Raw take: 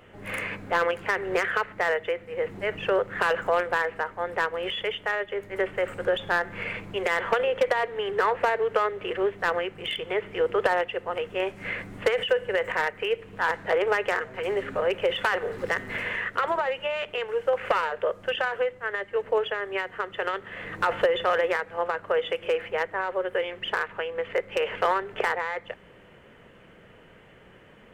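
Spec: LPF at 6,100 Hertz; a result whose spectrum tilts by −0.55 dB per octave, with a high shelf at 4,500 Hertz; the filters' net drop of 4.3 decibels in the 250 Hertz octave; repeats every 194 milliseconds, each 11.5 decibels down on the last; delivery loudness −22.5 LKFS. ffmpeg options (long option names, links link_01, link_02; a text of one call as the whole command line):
ffmpeg -i in.wav -af "lowpass=6100,equalizer=frequency=250:width_type=o:gain=-8.5,highshelf=frequency=4500:gain=-6,aecho=1:1:194|388|582:0.266|0.0718|0.0194,volume=6dB" out.wav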